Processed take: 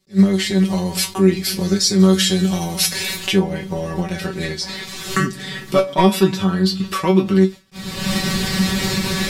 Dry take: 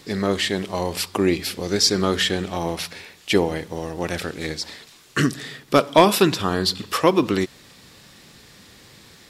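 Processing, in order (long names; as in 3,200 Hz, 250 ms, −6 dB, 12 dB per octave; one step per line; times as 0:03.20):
camcorder AGC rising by 40 dB per second
noise gate with hold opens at −25 dBFS
bass and treble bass +8 dB, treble +5 dB, from 0:01.98 treble +12 dB, from 0:03.15 treble −2 dB
tuned comb filter 190 Hz, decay 0.17 s, harmonics all, mix 100%
boost into a limiter +8.5 dB
level that may rise only so fast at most 420 dB per second
level −1 dB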